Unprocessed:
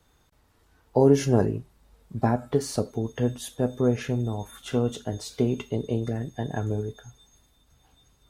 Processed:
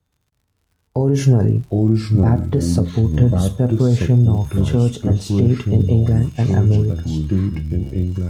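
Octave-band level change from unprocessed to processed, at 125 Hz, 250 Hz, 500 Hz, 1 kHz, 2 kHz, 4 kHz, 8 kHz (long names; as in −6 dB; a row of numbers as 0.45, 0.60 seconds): +15.5, +9.0, +2.5, +0.5, +3.5, +5.0, +4.0 decibels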